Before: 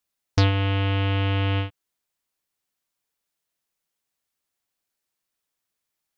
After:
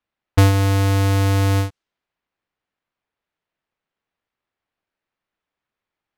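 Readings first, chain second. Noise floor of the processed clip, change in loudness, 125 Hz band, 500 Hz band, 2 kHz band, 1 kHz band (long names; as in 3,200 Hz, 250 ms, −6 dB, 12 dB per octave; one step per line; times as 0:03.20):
below −85 dBFS, +5.5 dB, +6.0 dB, +6.0 dB, +2.5 dB, +5.5 dB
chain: each half-wave held at its own peak
low-pass that shuts in the quiet parts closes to 2,500 Hz, open at −16.5 dBFS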